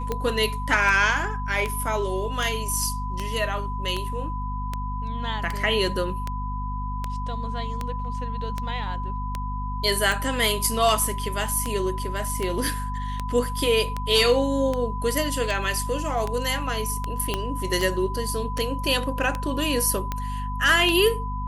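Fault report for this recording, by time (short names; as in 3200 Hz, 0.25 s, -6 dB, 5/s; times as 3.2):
hum 50 Hz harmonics 5 -30 dBFS
tick 78 rpm -13 dBFS
tone 1000 Hz -32 dBFS
17.34 pop -10 dBFS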